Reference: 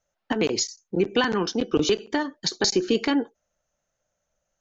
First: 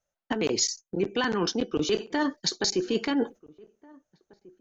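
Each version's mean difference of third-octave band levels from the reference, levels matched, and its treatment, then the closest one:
2.0 dB: noise gate −43 dBFS, range −14 dB
reversed playback
downward compressor 10 to 1, threshold −31 dBFS, peak gain reduction 15.5 dB
reversed playback
slap from a distant wall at 290 metres, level −24 dB
level +8 dB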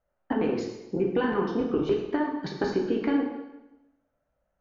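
7.5 dB: low-pass filter 1,500 Hz 12 dB per octave
downward compressor, threshold −24 dBFS, peak gain reduction 8 dB
dense smooth reverb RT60 0.96 s, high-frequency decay 0.95×, DRR 0 dB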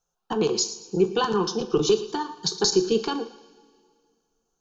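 5.0 dB: phaser with its sweep stopped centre 400 Hz, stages 8
feedback echo with a high-pass in the loop 114 ms, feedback 42%, level −16 dB
coupled-rooms reverb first 0.41 s, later 2.1 s, from −18 dB, DRR 7.5 dB
level +2 dB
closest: first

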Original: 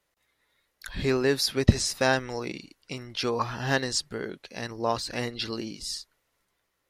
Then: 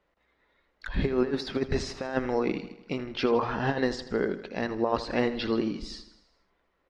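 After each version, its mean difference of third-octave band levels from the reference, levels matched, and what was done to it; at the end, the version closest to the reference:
8.0 dB: parametric band 120 Hz −10.5 dB 0.51 octaves
compressor whose output falls as the input rises −28 dBFS, ratio −0.5
head-to-tape spacing loss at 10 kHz 34 dB
repeating echo 80 ms, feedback 57%, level −14 dB
level +6 dB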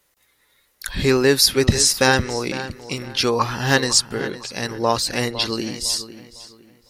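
4.0 dB: high-shelf EQ 6,700 Hz +10 dB
notch filter 660 Hz, Q 12
on a send: feedback echo with a low-pass in the loop 505 ms, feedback 31%, low-pass 3,800 Hz, level −13.5 dB
on the sum: boost into a limiter +9 dB
level −1 dB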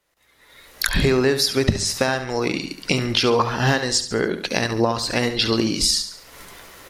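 6.0 dB: camcorder AGC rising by 34 dB per second
repeating echo 70 ms, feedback 41%, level −11 dB
in parallel at −1 dB: downward compressor, threshold −31 dBFS, peak gain reduction 20 dB
on the sum: mains-hum notches 50/100/150/200 Hz
level −2 dB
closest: second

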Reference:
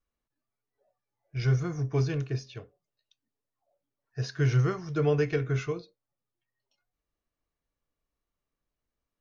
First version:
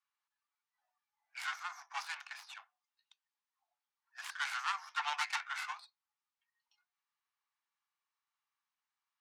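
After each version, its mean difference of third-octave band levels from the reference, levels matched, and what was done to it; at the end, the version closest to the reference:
19.5 dB: stylus tracing distortion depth 0.41 ms
Butterworth high-pass 800 Hz 72 dB per octave
high-frequency loss of the air 75 metres
level +2.5 dB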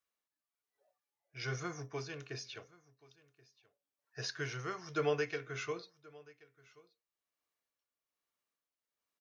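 6.0 dB: high-pass filter 1,000 Hz 6 dB per octave
amplitude tremolo 1.2 Hz, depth 53%
single-tap delay 1,079 ms −23 dB
level +2 dB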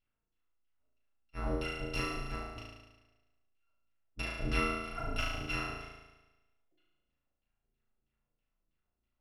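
13.0 dB: samples in bit-reversed order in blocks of 256 samples
auto-filter low-pass saw down 3.1 Hz 230–3,300 Hz
on a send: flutter between parallel walls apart 6.2 metres, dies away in 1.1 s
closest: second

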